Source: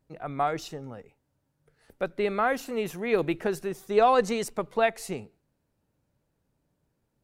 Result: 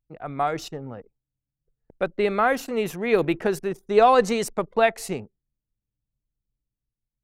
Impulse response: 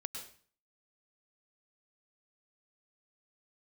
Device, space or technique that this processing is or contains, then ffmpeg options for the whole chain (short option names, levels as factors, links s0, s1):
voice memo with heavy noise removal: -af "anlmdn=0.0398,dynaudnorm=f=110:g=11:m=1.41,volume=1.19"